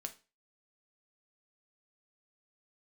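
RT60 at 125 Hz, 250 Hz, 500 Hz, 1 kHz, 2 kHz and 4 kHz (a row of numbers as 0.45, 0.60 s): 0.30, 0.30, 0.30, 0.30, 0.30, 0.30 s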